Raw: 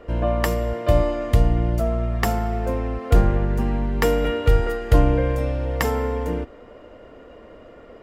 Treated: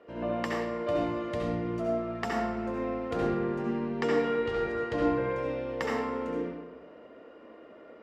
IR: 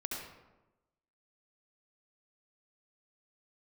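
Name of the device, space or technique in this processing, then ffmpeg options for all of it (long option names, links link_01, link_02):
supermarket ceiling speaker: -filter_complex "[0:a]highpass=210,lowpass=5400[link_01];[1:a]atrim=start_sample=2205[link_02];[link_01][link_02]afir=irnorm=-1:irlink=0,asettb=1/sr,asplit=3[link_03][link_04][link_05];[link_03]atrim=end=3.624[link_06];[link_04]atrim=start=3.62:end=5.7,asetpts=PTS-STARTPTS,afade=type=in:duration=0.004:curve=qsin,afade=type=out:start_time=2.076:duration=0.004:curve=qsin,lowpass=7900[link_07];[link_05]atrim=start=5.696[link_08];[link_06][link_07]acrossfade=duration=0.004:curve1=hsin:curve2=qsin[link_09];[link_09][link_08]acrossfade=duration=0.004:curve1=qsin:curve2=hsin,volume=-7.5dB"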